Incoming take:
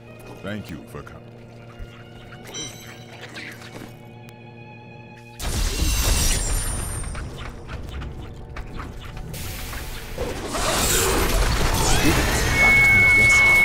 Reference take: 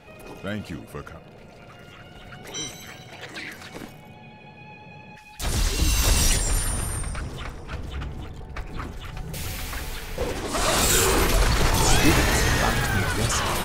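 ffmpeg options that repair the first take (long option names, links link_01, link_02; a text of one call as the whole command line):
ffmpeg -i in.wav -filter_complex "[0:a]adeclick=threshold=4,bandreject=frequency=117:width_type=h:width=4,bandreject=frequency=234:width_type=h:width=4,bandreject=frequency=351:width_type=h:width=4,bandreject=frequency=468:width_type=h:width=4,bandreject=frequency=585:width_type=h:width=4,bandreject=frequency=2200:width=30,asplit=3[link_01][link_02][link_03];[link_01]afade=type=out:start_time=1.78:duration=0.02[link_04];[link_02]highpass=frequency=140:width=0.5412,highpass=frequency=140:width=1.3066,afade=type=in:start_time=1.78:duration=0.02,afade=type=out:start_time=1.9:duration=0.02[link_05];[link_03]afade=type=in:start_time=1.9:duration=0.02[link_06];[link_04][link_05][link_06]amix=inputs=3:normalize=0,asplit=3[link_07][link_08][link_09];[link_07]afade=type=out:start_time=11.21:duration=0.02[link_10];[link_08]highpass=frequency=140:width=0.5412,highpass=frequency=140:width=1.3066,afade=type=in:start_time=11.21:duration=0.02,afade=type=out:start_time=11.33:duration=0.02[link_11];[link_09]afade=type=in:start_time=11.33:duration=0.02[link_12];[link_10][link_11][link_12]amix=inputs=3:normalize=0" out.wav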